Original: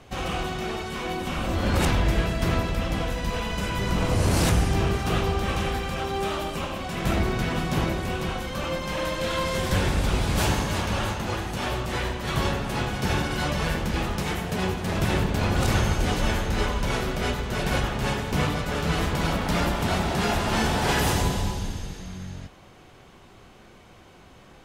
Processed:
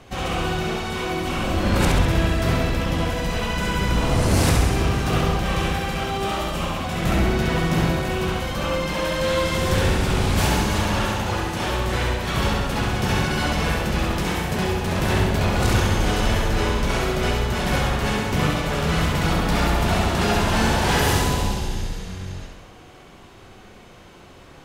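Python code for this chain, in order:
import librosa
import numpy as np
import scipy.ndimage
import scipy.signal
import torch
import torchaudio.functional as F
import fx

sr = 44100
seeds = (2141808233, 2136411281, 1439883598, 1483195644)

p1 = np.clip(x, -10.0 ** (-26.5 / 20.0), 10.0 ** (-26.5 / 20.0))
p2 = x + (p1 * 10.0 ** (-8.5 / 20.0))
y = fx.echo_feedback(p2, sr, ms=67, feedback_pct=59, wet_db=-3.5)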